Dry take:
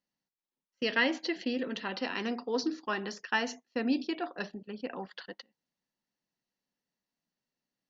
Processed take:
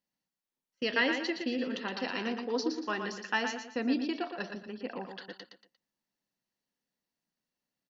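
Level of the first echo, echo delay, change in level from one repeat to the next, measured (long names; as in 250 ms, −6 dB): −6.5 dB, 117 ms, −9.5 dB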